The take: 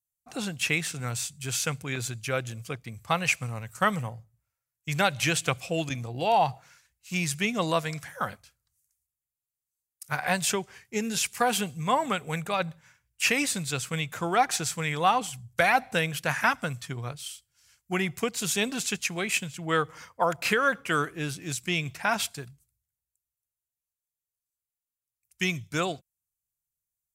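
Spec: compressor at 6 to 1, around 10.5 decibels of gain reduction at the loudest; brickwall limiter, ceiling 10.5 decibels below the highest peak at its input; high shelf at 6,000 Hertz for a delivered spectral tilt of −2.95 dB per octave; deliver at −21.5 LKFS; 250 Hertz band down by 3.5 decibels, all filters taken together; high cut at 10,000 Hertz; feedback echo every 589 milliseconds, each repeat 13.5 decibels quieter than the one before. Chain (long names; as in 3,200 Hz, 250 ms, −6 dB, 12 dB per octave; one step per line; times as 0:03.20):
low-pass filter 10,000 Hz
parametric band 250 Hz −5.5 dB
high-shelf EQ 6,000 Hz +6.5 dB
downward compressor 6 to 1, threshold −29 dBFS
brickwall limiter −24 dBFS
repeating echo 589 ms, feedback 21%, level −13.5 dB
level +14.5 dB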